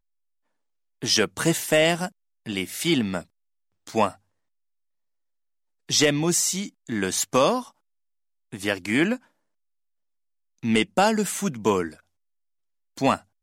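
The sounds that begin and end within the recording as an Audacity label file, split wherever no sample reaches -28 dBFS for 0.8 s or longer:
1.030000	4.090000	sound
5.900000	7.610000	sound
8.530000	9.160000	sound
10.640000	11.880000	sound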